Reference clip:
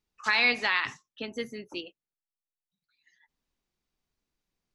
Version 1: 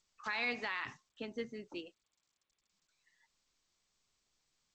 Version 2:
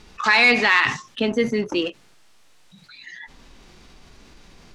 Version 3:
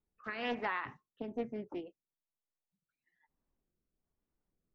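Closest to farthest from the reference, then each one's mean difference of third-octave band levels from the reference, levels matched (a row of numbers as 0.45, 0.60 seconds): 1, 2, 3; 3.5, 4.5, 7.5 decibels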